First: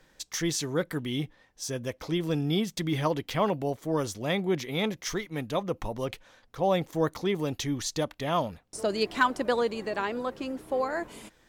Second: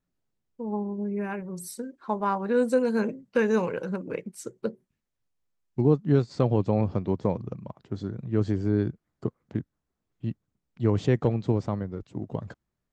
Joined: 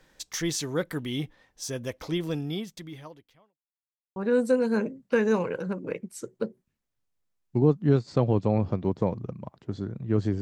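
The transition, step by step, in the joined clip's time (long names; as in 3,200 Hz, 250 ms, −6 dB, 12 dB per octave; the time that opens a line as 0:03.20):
first
0:02.17–0:03.59: fade out quadratic
0:03.59–0:04.16: silence
0:04.16: continue with second from 0:02.39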